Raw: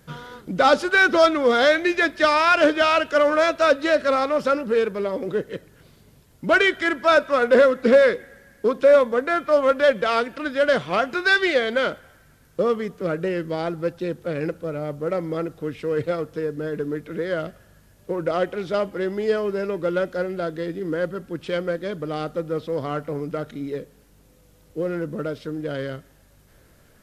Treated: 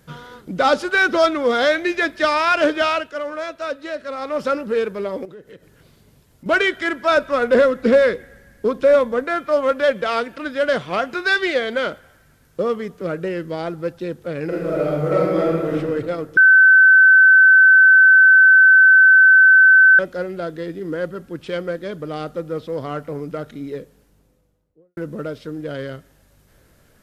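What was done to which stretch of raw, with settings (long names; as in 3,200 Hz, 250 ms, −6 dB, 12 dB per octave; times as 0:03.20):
0:02.87–0:04.41: duck −9 dB, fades 0.25 s
0:05.25–0:06.46: downward compressor 4 to 1, threshold −39 dBFS
0:07.16–0:09.24: low-shelf EQ 130 Hz +10.5 dB
0:14.46–0:15.74: thrown reverb, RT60 1.7 s, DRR −7 dB
0:16.37–0:19.99: beep over 1,530 Hz −6.5 dBFS
0:23.75–0:24.97: fade out and dull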